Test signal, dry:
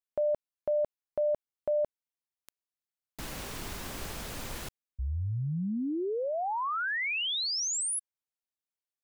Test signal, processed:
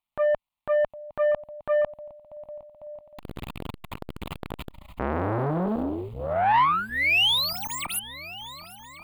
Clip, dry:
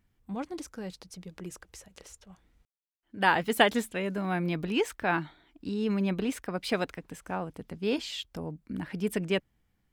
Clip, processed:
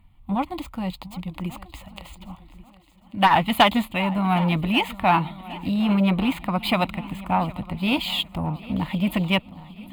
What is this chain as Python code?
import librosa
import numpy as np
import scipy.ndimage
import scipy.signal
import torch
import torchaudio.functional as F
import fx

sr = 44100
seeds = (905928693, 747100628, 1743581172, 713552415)

p1 = scipy.ndimage.median_filter(x, 5, mode='constant')
p2 = fx.low_shelf(p1, sr, hz=61.0, db=5.5)
p3 = fx.rider(p2, sr, range_db=3, speed_s=2.0)
p4 = p2 + F.gain(torch.from_numpy(p3), 0.0).numpy()
p5 = fx.fold_sine(p4, sr, drive_db=4, ceiling_db=-1.0)
p6 = fx.peak_eq(p5, sr, hz=950.0, db=3.5, octaves=0.43)
p7 = fx.fixed_phaser(p6, sr, hz=1600.0, stages=6)
p8 = p7 + fx.echo_heads(p7, sr, ms=380, heads='second and third', feedback_pct=42, wet_db=-20, dry=0)
p9 = fx.transformer_sat(p8, sr, knee_hz=930.0)
y = F.gain(torch.from_numpy(p9), -1.0).numpy()